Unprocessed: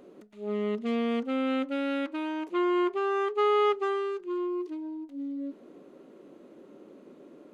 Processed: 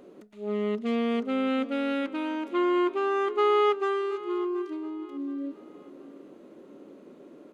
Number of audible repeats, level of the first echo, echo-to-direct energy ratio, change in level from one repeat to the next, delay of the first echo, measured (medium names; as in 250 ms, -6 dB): 2, -17.0 dB, -16.5 dB, -9.5 dB, 725 ms